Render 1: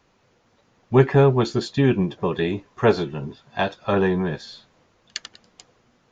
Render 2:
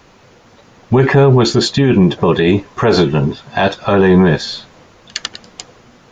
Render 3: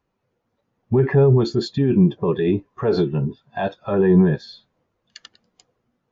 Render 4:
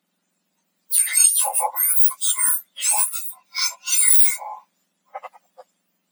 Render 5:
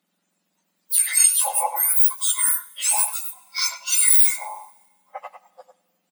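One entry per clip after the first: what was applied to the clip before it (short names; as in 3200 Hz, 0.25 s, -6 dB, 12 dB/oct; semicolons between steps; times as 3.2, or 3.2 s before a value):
in parallel at -1 dB: negative-ratio compressor -23 dBFS; on the sum: maximiser +10 dB; gain -1 dB
spectral expander 1.5:1; gain -4.5 dB
spectrum mirrored in octaves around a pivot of 1900 Hz; gain +7.5 dB
speakerphone echo 0.1 s, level -8 dB; plate-style reverb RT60 1.4 s, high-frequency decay 0.95×, DRR 19.5 dB; gain -1 dB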